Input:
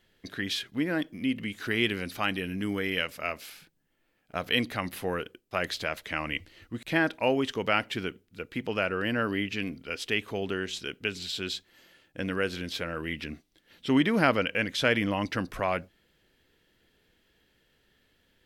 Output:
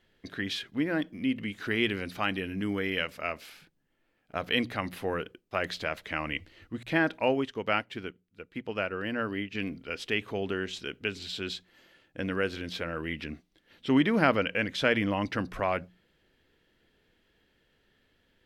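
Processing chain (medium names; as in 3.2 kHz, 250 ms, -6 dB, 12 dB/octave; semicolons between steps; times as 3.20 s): treble shelf 5.4 kHz -9.5 dB; hum notches 60/120/180 Hz; 7.26–9.55 s: upward expansion 1.5:1, over -47 dBFS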